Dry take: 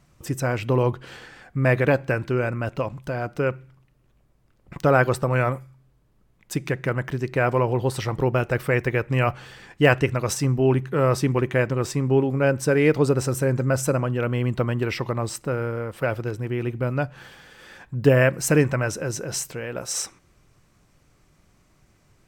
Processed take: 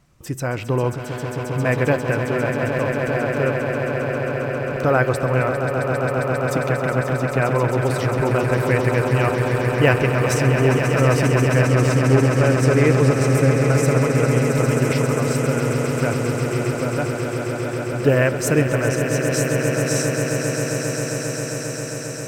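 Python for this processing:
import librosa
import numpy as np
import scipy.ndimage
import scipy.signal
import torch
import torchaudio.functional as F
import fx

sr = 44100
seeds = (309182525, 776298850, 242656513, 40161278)

y = fx.echo_swell(x, sr, ms=134, loudest=8, wet_db=-9.0)
y = fx.doppler_dist(y, sr, depth_ms=0.12, at=(11.65, 14.47))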